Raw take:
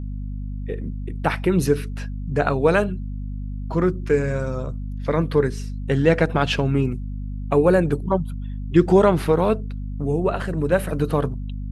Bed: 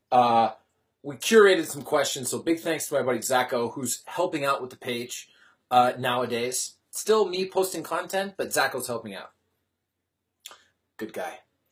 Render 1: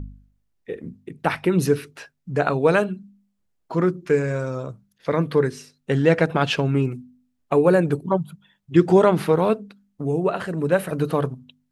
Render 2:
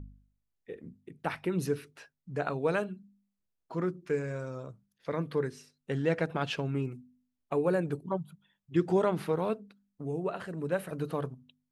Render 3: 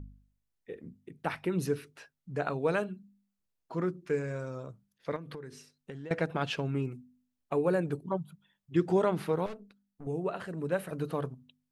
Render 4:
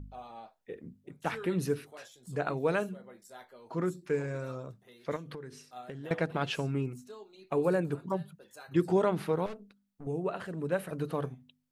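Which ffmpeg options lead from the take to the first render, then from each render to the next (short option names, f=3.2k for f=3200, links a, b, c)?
-af "bandreject=f=50:t=h:w=4,bandreject=f=100:t=h:w=4,bandreject=f=150:t=h:w=4,bandreject=f=200:t=h:w=4,bandreject=f=250:t=h:w=4"
-af "volume=-11.5dB"
-filter_complex "[0:a]asettb=1/sr,asplit=3[a][b][c];[a]atrim=end=5.164[d];[b]atrim=start=5.16:end=6.11,asetpts=PTS-STARTPTS,afade=t=in:d=0.004:c=qsin,afade=t=out:st=0.946:d=0.004:c=qsin,acompressor=threshold=-38dB:ratio=20:attack=3.2:release=140:knee=1:detection=peak[e];[c]atrim=start=6.106[f];[d][e]acrossfade=d=0.004:c1=hsin:c2=qsin[g];[g][f]acrossfade=d=0.004:c1=qsin:c2=hsin,asettb=1/sr,asplit=3[h][i][j];[h]atrim=end=9.464[k];[i]atrim=start=9.46:end=10.07,asetpts=PTS-STARTPTS,afade=t=in:d=0.004:c=qsin,afade=t=out:st=0.606:d=0.004:c=qsin,aeval=exprs='(tanh(89.1*val(0)+0.65)-tanh(0.65))/89.1':c=same[l];[j]atrim=start=10.066[m];[k][l]acrossfade=d=0.004:c1=hsin:c2=qsin[n];[n][m]acrossfade=d=0.004:c1=qsin:c2=hsin"
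-filter_complex "[1:a]volume=-27dB[a];[0:a][a]amix=inputs=2:normalize=0"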